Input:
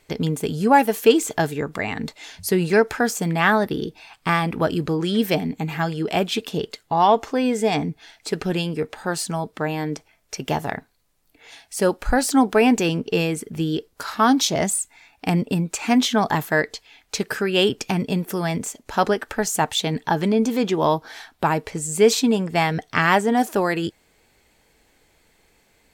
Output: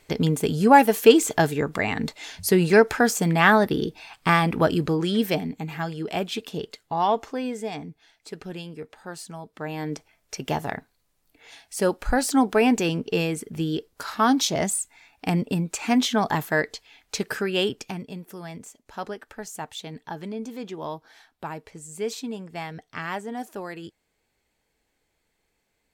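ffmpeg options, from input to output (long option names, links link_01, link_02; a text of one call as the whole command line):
ffmpeg -i in.wav -af "volume=10.5dB,afade=type=out:start_time=4.6:duration=1.01:silence=0.446684,afade=type=out:start_time=7.16:duration=0.61:silence=0.473151,afade=type=in:start_time=9.5:duration=0.44:silence=0.334965,afade=type=out:start_time=17.38:duration=0.69:silence=0.281838" out.wav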